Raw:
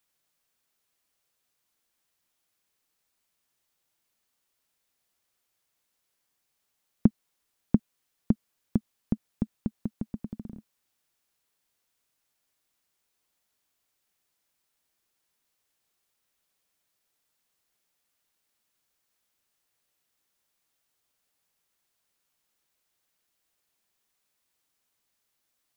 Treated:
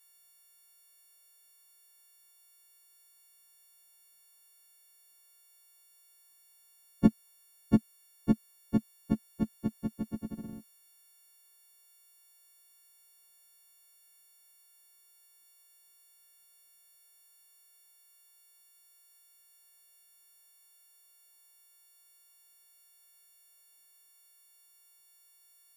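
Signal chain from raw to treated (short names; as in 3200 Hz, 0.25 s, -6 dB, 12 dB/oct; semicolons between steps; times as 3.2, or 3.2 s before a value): frequency quantiser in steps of 4 st; gain +1 dB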